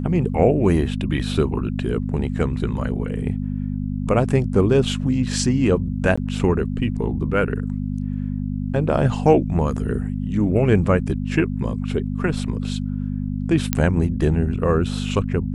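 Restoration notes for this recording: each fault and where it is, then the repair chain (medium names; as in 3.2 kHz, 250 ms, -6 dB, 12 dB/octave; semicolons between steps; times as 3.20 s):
hum 50 Hz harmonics 5 -25 dBFS
6.16–6.17 s: dropout 15 ms
13.73 s: pop -3 dBFS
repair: de-click; de-hum 50 Hz, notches 5; interpolate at 6.16 s, 15 ms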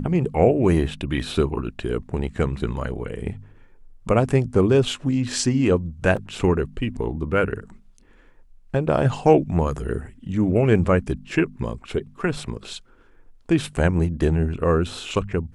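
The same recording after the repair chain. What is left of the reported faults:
nothing left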